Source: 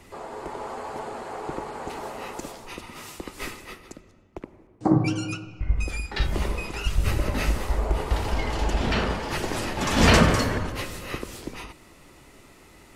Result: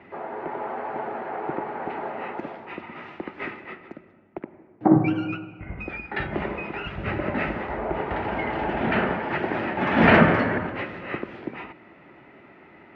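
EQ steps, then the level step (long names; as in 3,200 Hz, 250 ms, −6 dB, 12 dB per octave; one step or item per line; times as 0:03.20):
loudspeaker in its box 190–2,200 Hz, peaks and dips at 270 Hz −3 dB, 480 Hz −6 dB, 1,100 Hz −7 dB
+6.0 dB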